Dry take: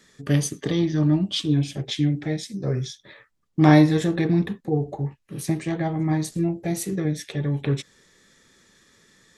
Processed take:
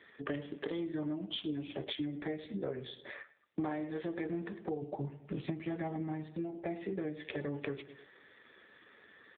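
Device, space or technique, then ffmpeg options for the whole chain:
voicemail: -filter_complex "[0:a]asplit=3[link_01][link_02][link_03];[link_01]afade=type=out:start_time=4.81:duration=0.02[link_04];[link_02]bass=frequency=250:gain=11,treble=frequency=4000:gain=12,afade=type=in:start_time=4.81:duration=0.02,afade=type=out:start_time=6.28:duration=0.02[link_05];[link_03]afade=type=in:start_time=6.28:duration=0.02[link_06];[link_04][link_05][link_06]amix=inputs=3:normalize=0,highpass=360,lowpass=3100,aecho=1:1:104|208|312:0.133|0.0453|0.0154,acompressor=threshold=-38dB:ratio=12,volume=4.5dB" -ar 8000 -c:a libopencore_amrnb -b:a 7400

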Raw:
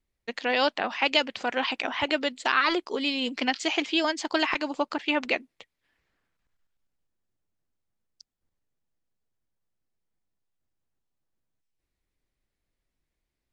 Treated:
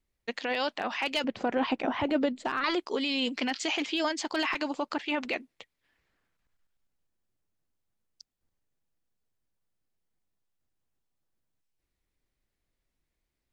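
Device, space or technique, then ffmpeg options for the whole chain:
clipper into limiter: -filter_complex "[0:a]asoftclip=type=hard:threshold=-13dB,alimiter=limit=-20dB:level=0:latency=1:release=12,asettb=1/sr,asplit=3[link_01][link_02][link_03];[link_01]atrim=end=1.244[link_04];[link_02]atrim=start=1.24:end=2.64,asetpts=PTS-STARTPTS,afade=type=in:duration=0.004:curve=qsin,afade=type=out:start_time=1.396:duration=0.004:curve=qsin,tiltshelf=frequency=1100:gain=9[link_05];[link_03]atrim=start=2.636[link_06];[link_04][link_05]acrossfade=duration=0.004:curve1=hsin:curve2=qsin[link_07];[link_07][link_06]acrossfade=duration=0.004:curve1=qsin:curve2=hsin"

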